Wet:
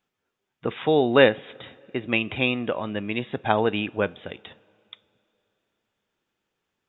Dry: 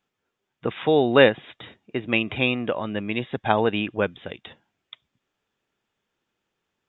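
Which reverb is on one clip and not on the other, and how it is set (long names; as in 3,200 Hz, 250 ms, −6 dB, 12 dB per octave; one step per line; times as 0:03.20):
coupled-rooms reverb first 0.3 s, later 3.2 s, from −20 dB, DRR 17.5 dB
level −1 dB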